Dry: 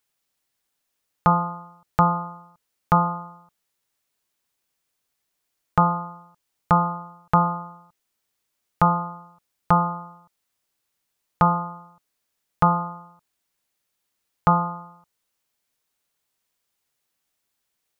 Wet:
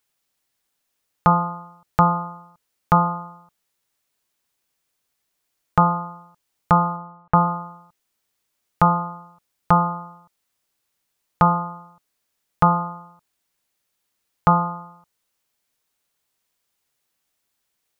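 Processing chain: 6.96–7.46 s: low-pass 1.5 kHz -> 1.9 kHz 12 dB/octave; trim +2 dB

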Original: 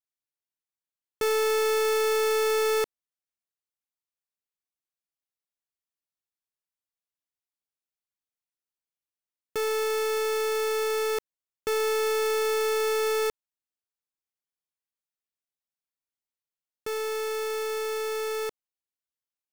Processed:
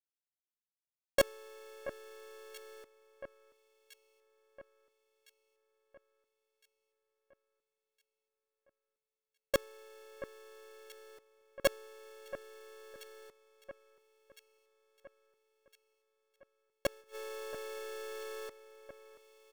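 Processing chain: reverb removal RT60 0.76 s; gate with hold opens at -30 dBFS; harmony voices -3 st -17 dB, +4 st -6 dB; inverted gate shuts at -28 dBFS, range -36 dB; echo whose repeats swap between lows and highs 680 ms, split 2.1 kHz, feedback 69%, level -13.5 dB; trim +9.5 dB

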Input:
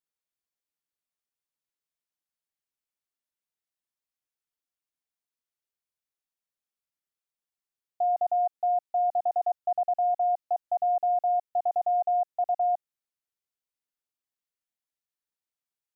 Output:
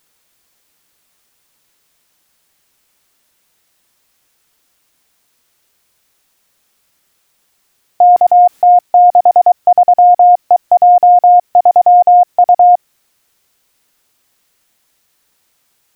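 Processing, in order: 8.16–8.81 s: compressor with a negative ratio -35 dBFS, ratio -1; loudness maximiser +32.5 dB; trim -1 dB

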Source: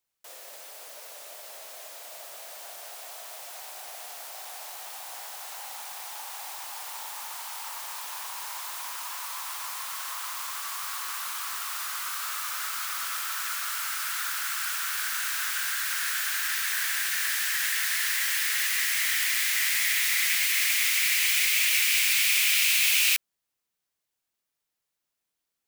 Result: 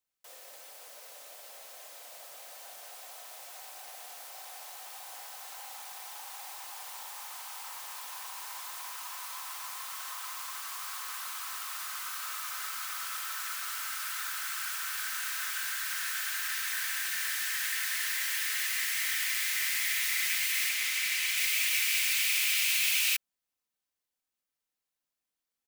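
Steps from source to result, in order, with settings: 20.69–21.38 s: treble shelf 8.9 kHz -5 dB; comb 3.9 ms, depth 31%; trim -5.5 dB

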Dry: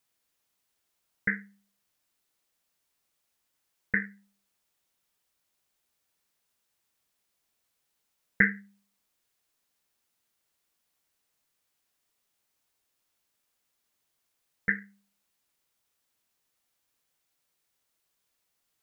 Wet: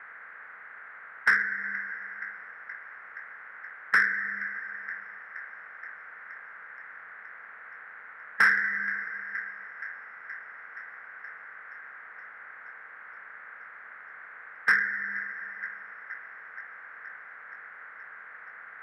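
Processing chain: spectral levelling over time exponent 0.6; three-band isolator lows -14 dB, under 550 Hz, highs -18 dB, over 2.3 kHz; overdrive pedal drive 12 dB, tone 1.8 kHz, clips at -7.5 dBFS; reverberation RT60 2.6 s, pre-delay 107 ms, DRR 11.5 dB; in parallel at 0 dB: compression, threshold -48 dBFS, peak gain reduction 26.5 dB; on the sum: feedback echo behind a high-pass 473 ms, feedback 75%, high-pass 1.6 kHz, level -17 dB; saturation -23.5 dBFS, distortion -8 dB; peaking EQ 1.3 kHz +12 dB 1.2 oct

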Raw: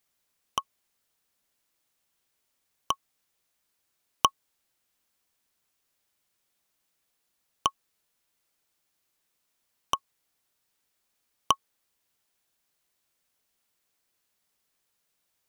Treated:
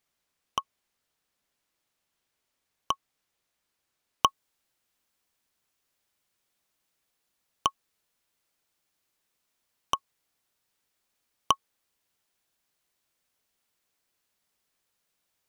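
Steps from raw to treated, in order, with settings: treble shelf 7.3 kHz -8 dB, from 4.27 s -3 dB

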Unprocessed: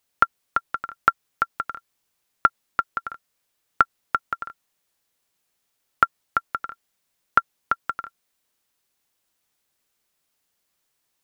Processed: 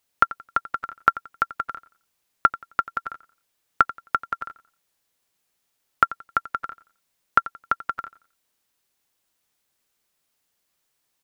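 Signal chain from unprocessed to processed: feedback delay 88 ms, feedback 28%, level -17.5 dB

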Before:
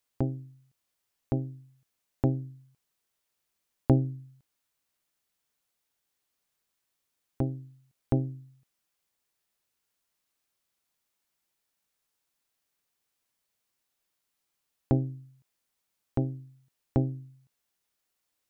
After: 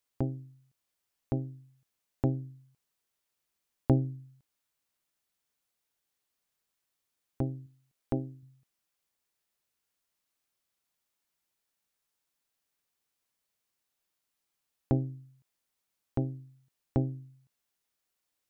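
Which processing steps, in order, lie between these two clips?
7.66–8.43 s: peaking EQ 98 Hz -8 dB 1.3 oct; trim -2.5 dB

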